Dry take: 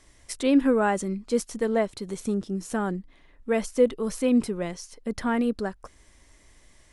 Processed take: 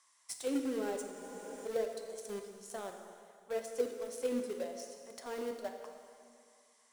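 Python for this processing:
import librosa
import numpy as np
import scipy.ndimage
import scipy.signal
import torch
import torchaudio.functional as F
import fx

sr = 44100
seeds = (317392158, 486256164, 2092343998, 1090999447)

p1 = fx.bass_treble(x, sr, bass_db=12, treble_db=13)
p2 = fx.auto_wah(p1, sr, base_hz=350.0, top_hz=1100.0, q=5.1, full_db=-13.5, direction='down')
p3 = np.diff(p2, prepend=0.0)
p4 = fx.quant_companded(p3, sr, bits=4)
p5 = p3 + F.gain(torch.from_numpy(p4), -8.0).numpy()
p6 = fx.rev_plate(p5, sr, seeds[0], rt60_s=2.2, hf_ratio=0.9, predelay_ms=0, drr_db=3.5)
p7 = fx.spec_freeze(p6, sr, seeds[1], at_s=1.13, hold_s=0.54)
y = F.gain(torch.from_numpy(p7), 13.0).numpy()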